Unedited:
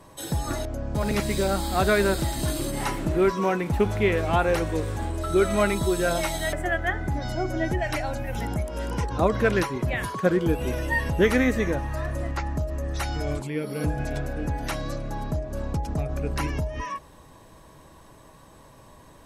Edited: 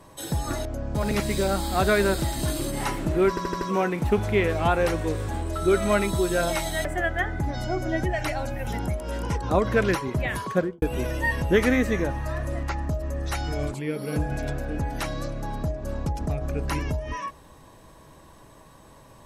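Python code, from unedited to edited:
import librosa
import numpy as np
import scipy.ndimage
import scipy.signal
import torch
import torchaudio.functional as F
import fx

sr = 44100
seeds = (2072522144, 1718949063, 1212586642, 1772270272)

y = fx.studio_fade_out(x, sr, start_s=10.19, length_s=0.31)
y = fx.edit(y, sr, fx.stutter(start_s=3.29, slice_s=0.08, count=5), tone=tone)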